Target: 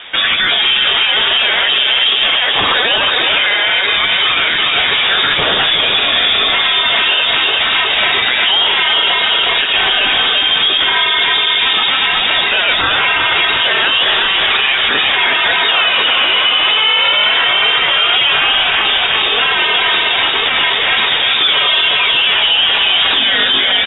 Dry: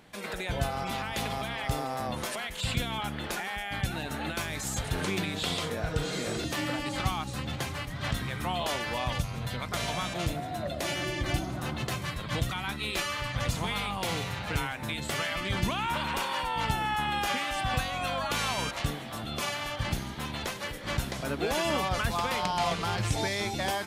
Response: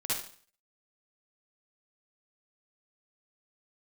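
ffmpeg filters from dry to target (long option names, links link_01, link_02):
-af "highpass=320,aresample=11025,asoftclip=type=tanh:threshold=-24.5dB,aresample=44100,flanger=delay=7.3:depth=6.3:regen=-2:speed=1.1:shape=triangular,aecho=1:1:362|724|1086|1448|1810|2172:0.596|0.268|0.121|0.0543|0.0244|0.011,lowpass=frequency=3300:width_type=q:width=0.5098,lowpass=frequency=3300:width_type=q:width=0.6013,lowpass=frequency=3300:width_type=q:width=0.9,lowpass=frequency=3300:width_type=q:width=2.563,afreqshift=-3900,alimiter=level_in=33.5dB:limit=-1dB:release=50:level=0:latency=1,volume=-3dB"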